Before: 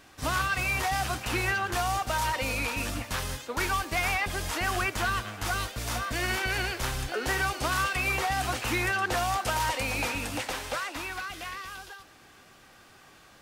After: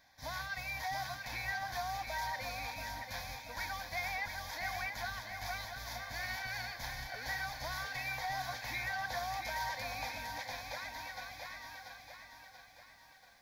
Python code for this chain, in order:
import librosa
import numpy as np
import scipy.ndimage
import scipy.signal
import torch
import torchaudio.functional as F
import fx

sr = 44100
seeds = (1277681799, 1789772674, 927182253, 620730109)

y = fx.low_shelf(x, sr, hz=380.0, db=-7.5)
y = fx.fixed_phaser(y, sr, hz=1900.0, stages=8)
y = fx.echo_crushed(y, sr, ms=684, feedback_pct=55, bits=10, wet_db=-6.5)
y = y * 10.0 ** (-7.5 / 20.0)